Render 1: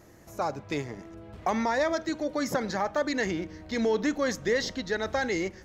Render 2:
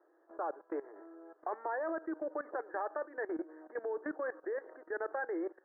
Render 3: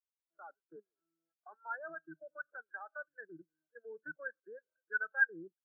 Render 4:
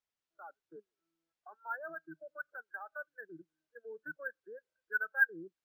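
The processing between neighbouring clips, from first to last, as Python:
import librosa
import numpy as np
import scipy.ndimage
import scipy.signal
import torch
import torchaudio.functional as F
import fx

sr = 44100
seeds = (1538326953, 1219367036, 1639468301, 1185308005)

y1 = scipy.signal.sosfilt(scipy.signal.cheby1(5, 1.0, [320.0, 1700.0], 'bandpass', fs=sr, output='sos'), x)
y1 = fx.level_steps(y1, sr, step_db=17)
y1 = y1 * 10.0 ** (-1.5 / 20.0)
y2 = fx.octave_divider(y1, sr, octaves=1, level_db=-1.0)
y2 = fx.lowpass_res(y2, sr, hz=1500.0, q=7.9)
y2 = fx.spectral_expand(y2, sr, expansion=2.5)
y2 = y2 * 10.0 ** (-1.0 / 20.0)
y3 = np.interp(np.arange(len(y2)), np.arange(len(y2))[::3], y2[::3])
y3 = y3 * 10.0 ** (1.5 / 20.0)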